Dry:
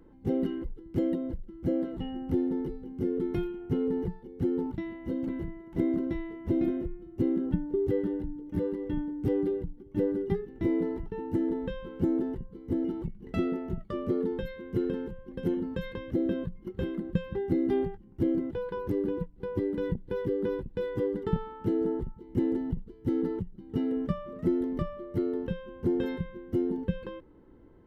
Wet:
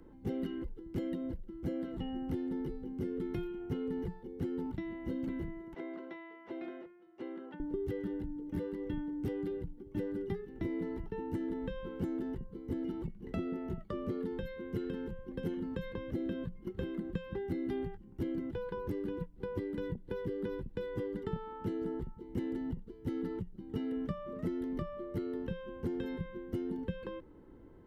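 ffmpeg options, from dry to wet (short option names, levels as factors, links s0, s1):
-filter_complex "[0:a]asettb=1/sr,asplit=3[s0][s1][s2];[s0]atrim=end=5.744[s3];[s1]atrim=start=5.74:end=7.6,asetpts=PTS-STARTPTS,afade=t=in:d=0.004:c=qsin,afade=t=out:st=1.856:d=0.004:c=qsin,highpass=760,lowpass=3400[s4];[s2]atrim=start=7.596[s5];[s3][s4]acrossfade=d=0.004:c1=hsin:c2=qsin[s6];[s6][s5]acrossfade=d=0.004:c1=qsin:c2=hsin,acrossover=split=210|1200[s7][s8][s9];[s7]acompressor=threshold=0.0112:ratio=4[s10];[s8]acompressor=threshold=0.0112:ratio=4[s11];[s9]acompressor=threshold=0.00224:ratio=4[s12];[s10][s11][s12]amix=inputs=3:normalize=0"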